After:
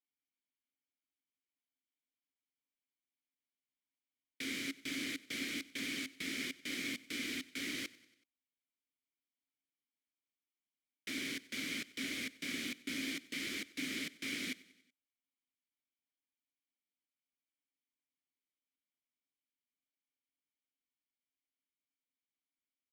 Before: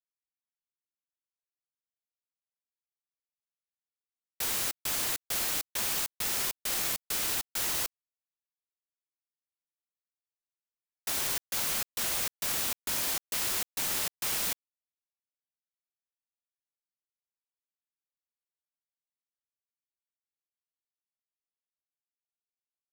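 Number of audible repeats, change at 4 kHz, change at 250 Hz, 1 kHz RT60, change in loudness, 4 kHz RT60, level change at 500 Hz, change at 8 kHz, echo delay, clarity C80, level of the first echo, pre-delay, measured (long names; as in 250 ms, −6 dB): 3, −6.5 dB, +6.5 dB, no reverb audible, −10.5 dB, no reverb audible, −8.0 dB, −15.5 dB, 94 ms, no reverb audible, −21.0 dB, no reverb audible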